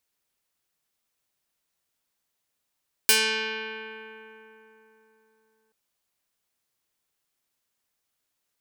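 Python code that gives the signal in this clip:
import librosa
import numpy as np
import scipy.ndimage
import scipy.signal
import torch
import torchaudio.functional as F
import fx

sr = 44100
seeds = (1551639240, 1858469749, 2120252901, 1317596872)

y = fx.pluck(sr, length_s=2.63, note=57, decay_s=3.77, pick=0.34, brightness='medium')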